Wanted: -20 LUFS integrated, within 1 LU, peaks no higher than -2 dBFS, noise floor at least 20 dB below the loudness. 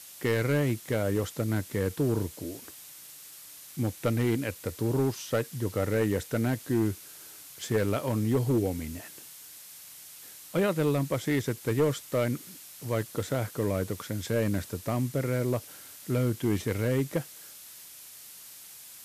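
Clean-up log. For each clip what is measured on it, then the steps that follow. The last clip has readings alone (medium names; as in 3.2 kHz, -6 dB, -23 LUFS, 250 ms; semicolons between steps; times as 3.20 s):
clipped samples 0.9%; clipping level -19.0 dBFS; noise floor -48 dBFS; noise floor target -50 dBFS; loudness -29.5 LUFS; peak level -19.0 dBFS; loudness target -20.0 LUFS
-> clip repair -19 dBFS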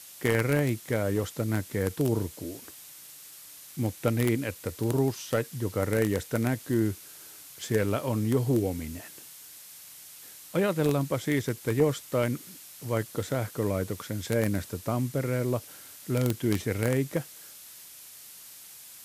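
clipped samples 0.0%; noise floor -48 dBFS; noise floor target -49 dBFS
-> noise reduction 6 dB, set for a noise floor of -48 dBFS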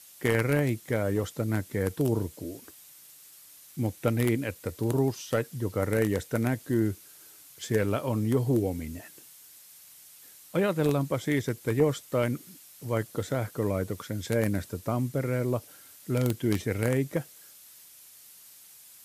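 noise floor -52 dBFS; loudness -29.0 LUFS; peak level -10.0 dBFS; loudness target -20.0 LUFS
-> trim +9 dB; peak limiter -2 dBFS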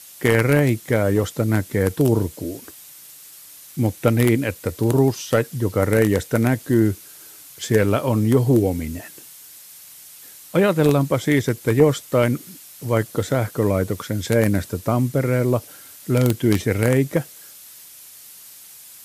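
loudness -20.0 LUFS; peak level -2.0 dBFS; noise floor -43 dBFS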